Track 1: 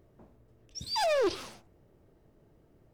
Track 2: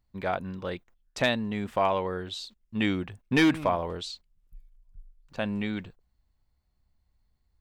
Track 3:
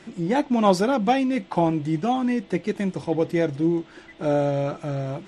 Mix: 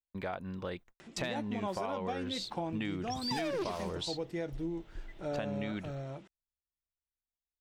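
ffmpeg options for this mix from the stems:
-filter_complex "[0:a]adelay=2350,volume=0dB[a];[1:a]dynaudnorm=f=240:g=11:m=6.5dB,agate=range=-33dB:threshold=-50dB:ratio=16:detection=peak,acompressor=threshold=-37dB:ratio=2,volume=-1dB[b];[2:a]equalizer=f=240:w=1.5:g=-3.5,acompressor=mode=upward:threshold=-38dB:ratio=2.5,adelay=1000,volume=-12dB[c];[a][b][c]amix=inputs=3:normalize=0,acompressor=threshold=-32dB:ratio=6"

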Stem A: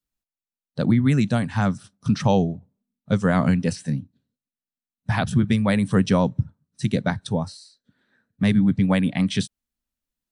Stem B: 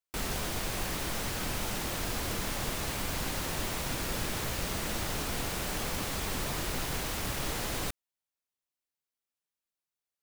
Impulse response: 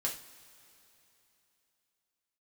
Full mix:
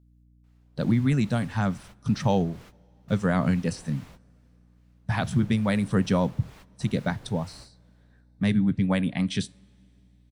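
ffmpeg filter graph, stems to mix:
-filter_complex "[0:a]aeval=exprs='val(0)+0.00224*(sin(2*PI*60*n/s)+sin(2*PI*2*60*n/s)/2+sin(2*PI*3*60*n/s)/3+sin(2*PI*4*60*n/s)/4+sin(2*PI*5*60*n/s)/5)':c=same,volume=-5dB,asplit=3[a][b][c];[b]volume=-19dB[d];[1:a]lowpass=f=2.9k:p=1,acrossover=split=880[e][f];[e]aeval=exprs='val(0)*(1-0.5/2+0.5/2*cos(2*PI*2.3*n/s))':c=same[g];[f]aeval=exprs='val(0)*(1-0.5/2-0.5/2*cos(2*PI*2.3*n/s))':c=same[h];[g][h]amix=inputs=2:normalize=0,adelay=300,volume=-12.5dB[i];[c]apad=whole_len=464045[j];[i][j]sidechaingate=range=-25dB:threshold=-49dB:ratio=16:detection=peak[k];[2:a]atrim=start_sample=2205[l];[d][l]afir=irnorm=-1:irlink=0[m];[a][k][m]amix=inputs=3:normalize=0"

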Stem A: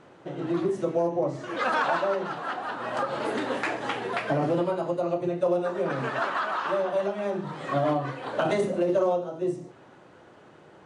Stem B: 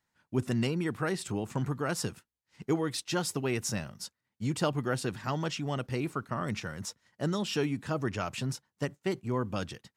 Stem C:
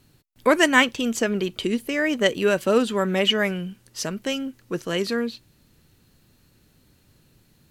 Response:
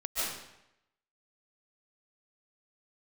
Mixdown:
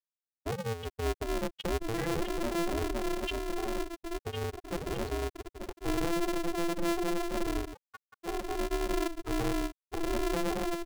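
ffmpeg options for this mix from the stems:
-filter_complex "[0:a]equalizer=f=180:w=1.6:g=14.5,adelay=1550,volume=-2.5dB[a];[1:a]equalizer=f=420:w=3.1:g=-7.5,volume=-15.5dB[b];[2:a]volume=-2dB[c];[a][c]amix=inputs=2:normalize=0,acrossover=split=270|3000[d][e][f];[e]acompressor=threshold=-45dB:ratio=2[g];[d][g][f]amix=inputs=3:normalize=0,alimiter=limit=-23.5dB:level=0:latency=1:release=14,volume=0dB[h];[b][h]amix=inputs=2:normalize=0,afftfilt=real='re*gte(hypot(re,im),0.126)':imag='im*gte(hypot(re,im),0.126)':win_size=1024:overlap=0.75,aeval=exprs='val(0)*sgn(sin(2*PI*170*n/s))':c=same"

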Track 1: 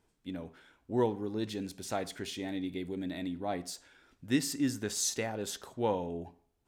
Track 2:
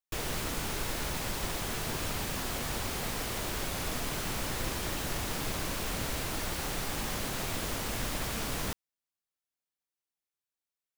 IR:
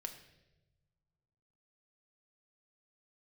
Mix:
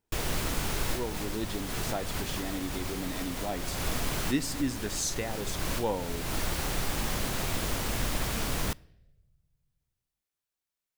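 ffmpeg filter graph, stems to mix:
-filter_complex "[0:a]afade=t=in:st=0.95:d=0.39:silence=0.316228,asplit=2[a][b];[1:a]lowshelf=f=130:g=4.5,volume=1dB,asplit=2[c][d];[d]volume=-13.5dB[e];[b]apad=whole_len=483946[f];[c][f]sidechaincompress=threshold=-41dB:ratio=8:attack=32:release=248[g];[2:a]atrim=start_sample=2205[h];[e][h]afir=irnorm=-1:irlink=0[i];[a][g][i]amix=inputs=3:normalize=0"

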